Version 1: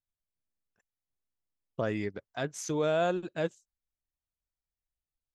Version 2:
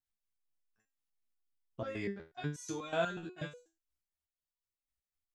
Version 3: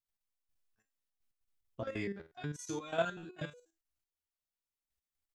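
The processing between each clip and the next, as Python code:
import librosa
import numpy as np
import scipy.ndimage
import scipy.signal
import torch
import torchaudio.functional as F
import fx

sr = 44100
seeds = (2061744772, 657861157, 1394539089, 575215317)

y1 = fx.peak_eq(x, sr, hz=510.0, db=-6.0, octaves=0.7)
y1 = fx.resonator_held(y1, sr, hz=8.2, low_hz=60.0, high_hz=490.0)
y1 = F.gain(torch.from_numpy(y1), 6.5).numpy()
y2 = fx.level_steps(y1, sr, step_db=10)
y2 = F.gain(torch.from_numpy(y2), 3.0).numpy()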